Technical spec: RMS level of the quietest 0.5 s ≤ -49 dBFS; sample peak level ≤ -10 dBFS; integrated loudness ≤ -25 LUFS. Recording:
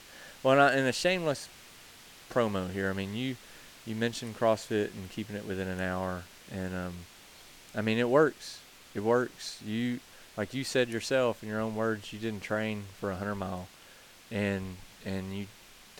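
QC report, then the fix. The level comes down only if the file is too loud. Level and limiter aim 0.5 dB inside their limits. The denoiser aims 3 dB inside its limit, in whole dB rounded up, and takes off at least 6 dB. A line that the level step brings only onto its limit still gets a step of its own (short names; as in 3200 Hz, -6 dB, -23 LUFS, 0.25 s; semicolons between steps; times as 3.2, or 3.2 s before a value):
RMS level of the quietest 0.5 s -54 dBFS: OK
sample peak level -11.0 dBFS: OK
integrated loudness -31.5 LUFS: OK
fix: none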